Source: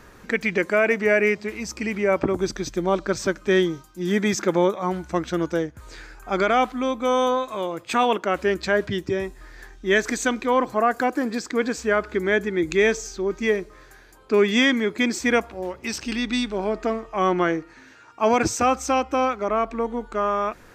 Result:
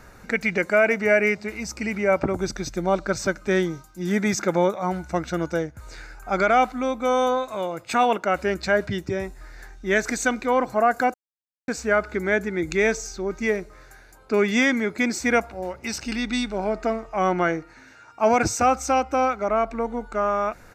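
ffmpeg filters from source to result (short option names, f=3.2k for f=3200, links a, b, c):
-filter_complex "[0:a]asplit=3[a][b][c];[a]atrim=end=11.14,asetpts=PTS-STARTPTS,afade=t=out:st=11.136:d=0.004:c=hsin[d];[b]atrim=start=11.14:end=11.68,asetpts=PTS-STARTPTS,volume=0[e];[c]atrim=start=11.68,asetpts=PTS-STARTPTS,afade=t=in:d=0.004:c=hsin[f];[d][e][f]concat=n=3:v=0:a=1,equalizer=f=3.2k:w=7.4:g=-10,aecho=1:1:1.4:0.34"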